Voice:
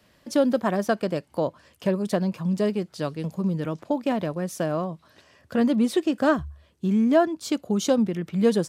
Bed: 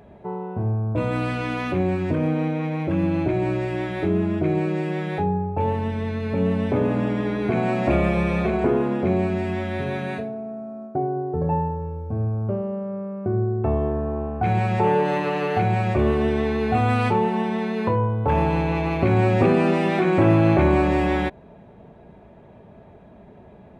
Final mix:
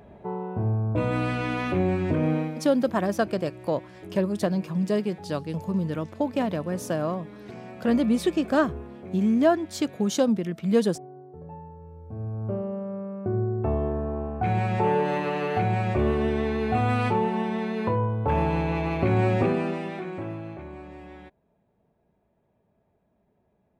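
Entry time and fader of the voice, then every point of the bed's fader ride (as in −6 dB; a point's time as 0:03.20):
2.30 s, −1.0 dB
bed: 0:02.36 −1.5 dB
0:02.75 −19 dB
0:11.60 −19 dB
0:12.56 −3.5 dB
0:19.32 −3.5 dB
0:20.63 −23 dB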